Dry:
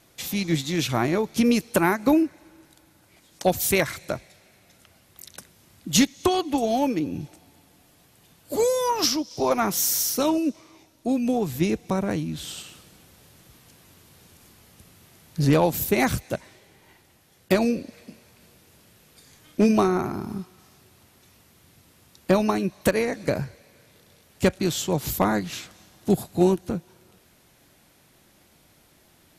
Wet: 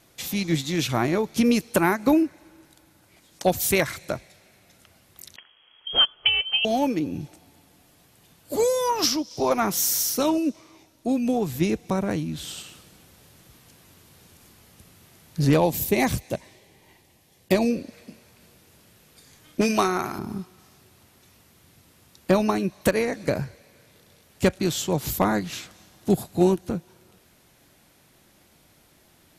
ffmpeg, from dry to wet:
-filter_complex "[0:a]asettb=1/sr,asplit=3[a][b][c];[a]atrim=end=5.364[d];[b]atrim=start=5.36:end=6.65,asetpts=PTS-STARTPTS,afade=t=in:d=0.004:c=qsin,afade=t=out:st=1.286:d=0.004:c=qsin,lowpass=f=2.9k:t=q:w=0.5098,lowpass=f=2.9k:t=q:w=0.6013,lowpass=f=2.9k:t=q:w=0.9,lowpass=f=2.9k:t=q:w=2.563,afreqshift=-3400[e];[c]atrim=start=6.646[f];[d][e]acrossfade=d=0.004:c1=hsin:c2=qsin[g];[g][f]acrossfade=d=0.004:c1=qsin:c2=hsin,asettb=1/sr,asplit=3[h][i][j];[h]atrim=end=15.574[k];[i]atrim=start=15.57:end=17.71,asetpts=PTS-STARTPTS,afade=t=in:d=0.004:c=qsin,afade=t=out:st=2.136:d=0.004:c=qsin,equalizer=f=1.4k:w=4.7:g=-12[l];[j]atrim=start=17.706[m];[k][l]acrossfade=d=0.004:c1=hsin:c2=qsin[n];[n][m]acrossfade=d=0.004:c1=qsin:c2=hsin,asettb=1/sr,asplit=3[o][p][q];[o]atrim=end=19.614[r];[p]atrim=start=19.61:end=20.19,asetpts=PTS-STARTPTS,afade=t=in:d=0.004:c=qsin,afade=t=out:st=0.576:d=0.004:c=qsin,tiltshelf=f=720:g=-7[s];[q]atrim=start=20.186[t];[r][s]acrossfade=d=0.004:c1=hsin:c2=qsin[u];[u][t]acrossfade=d=0.004:c1=qsin:c2=hsin"

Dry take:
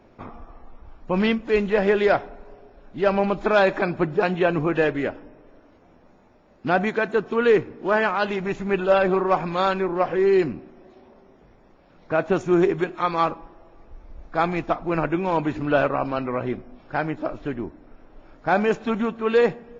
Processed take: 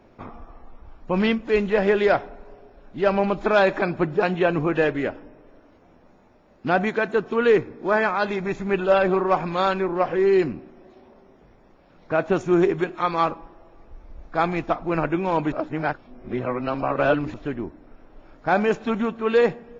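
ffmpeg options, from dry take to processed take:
-filter_complex "[0:a]asettb=1/sr,asplit=3[a][b][c];[a]atrim=end=7.584[d];[b]atrim=start=7.58:end=8.64,asetpts=PTS-STARTPTS,afade=t=in:d=0.004:c=qsin,afade=t=out:st=1.056:d=0.004:c=qsin,asuperstop=centerf=2900:order=4:qfactor=6.9[e];[c]atrim=start=8.636[f];[d][e]acrossfade=d=0.004:c1=hsin:c2=qsin[g];[g][f]acrossfade=d=0.004:c1=qsin:c2=hsin,asplit=3[h][i][j];[h]atrim=end=15.522[k];[i]atrim=start=15.518:end=17.342,asetpts=PTS-STARTPTS,areverse[l];[j]atrim=start=17.338[m];[k][l]acrossfade=d=0.004:c1=hsin:c2=hsin[n];[n][m]acrossfade=d=0.004:c1=hsin:c2=hsin"

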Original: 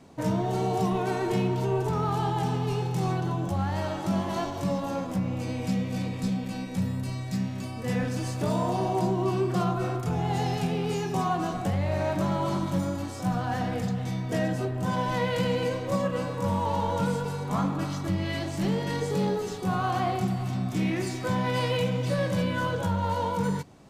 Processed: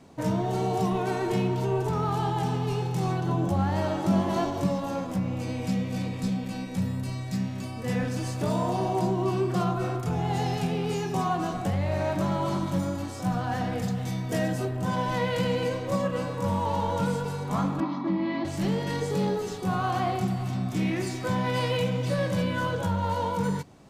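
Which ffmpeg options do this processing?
-filter_complex "[0:a]asettb=1/sr,asplit=3[a][b][c];[a]atrim=end=3.284[d];[b]atrim=start=3.28:end=4.67,asetpts=PTS-STARTPTS,afade=t=in:d=0.004:c=qsin,afade=t=out:st=1.386:d=0.004:c=qsin,equalizer=f=320:t=o:w=2.7:g=5[e];[c]atrim=start=4.666[f];[d][e]acrossfade=d=0.004:c1=hsin:c2=qsin[g];[g][f]acrossfade=d=0.004:c1=qsin:c2=hsin,asettb=1/sr,asplit=3[h][i][j];[h]atrim=end=13.824[k];[i]atrim=start=13.82:end=14.77,asetpts=PTS-STARTPTS,afade=t=in:d=0.004:c=qsin,afade=t=out:st=0.946:d=0.004:c=qsin,highshelf=f=7.1k:g=8[l];[j]atrim=start=14.766[m];[k][l]acrossfade=d=0.004:c1=hsin:c2=qsin[n];[n][m]acrossfade=d=0.004:c1=qsin:c2=hsin,asettb=1/sr,asplit=3[o][p][q];[o]atrim=end=17.804[r];[p]atrim=start=17.8:end=18.45,asetpts=PTS-STARTPTS,afade=t=in:d=0.004:c=qsin,afade=t=out:st=0.646:d=0.004:c=qsin,highpass=f=190:w=0.5412,highpass=f=190:w=1.3066,equalizer=f=230:t=q:w=4:g=9,equalizer=f=320:t=q:w=4:g=8,equalizer=f=460:t=q:w=4:g=-10,equalizer=f=1k:t=q:w=4:g=9,equalizer=f=1.5k:t=q:w=4:g=-8,equalizer=f=2.9k:t=q:w=4:g=-9,lowpass=f=3.6k:w=0.5412,lowpass=f=3.6k:w=1.3066[s];[q]atrim=start=18.446[t];[r][s]acrossfade=d=0.004:c1=hsin:c2=qsin[u];[u][t]acrossfade=d=0.004:c1=qsin:c2=hsin"

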